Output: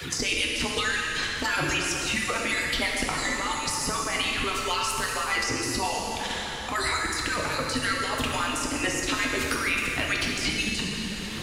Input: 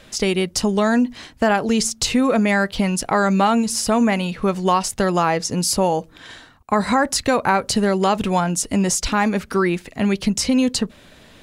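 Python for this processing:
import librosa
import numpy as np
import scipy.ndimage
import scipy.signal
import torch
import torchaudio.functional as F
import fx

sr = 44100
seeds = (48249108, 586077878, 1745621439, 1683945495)

y = fx.hpss_only(x, sr, part='percussive')
y = fx.peak_eq(y, sr, hz=650.0, db=-7.5, octaves=1.2)
y = fx.over_compress(y, sr, threshold_db=-31.0, ratio=-1.0)
y = fx.rev_plate(y, sr, seeds[0], rt60_s=2.1, hf_ratio=0.9, predelay_ms=0, drr_db=-2.0)
y = fx.band_squash(y, sr, depth_pct=70)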